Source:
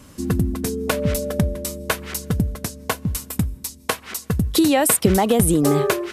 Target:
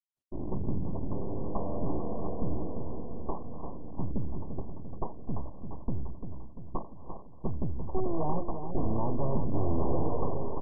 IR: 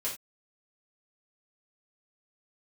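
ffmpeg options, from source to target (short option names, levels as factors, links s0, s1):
-filter_complex "[0:a]lowpass=6700,agate=range=0.00141:threshold=0.0112:ratio=16:detection=peak,acrossover=split=3300[s0][s1];[s0]aeval=exprs='abs(val(0))':c=same[s2];[s2][s1]amix=inputs=2:normalize=0,aeval=exprs='(tanh(2.82*val(0)+0.5)-tanh(0.5))/2.82':c=same,asplit=2[s3][s4];[s4]aecho=0:1:199|398|597|796|995|1194|1393:0.398|0.227|0.129|0.0737|0.042|0.024|0.0137[s5];[s3][s5]amix=inputs=2:normalize=0,asetrate=25442,aresample=44100,volume=0.668" -ar 24000 -c:a mp2 -b:a 8k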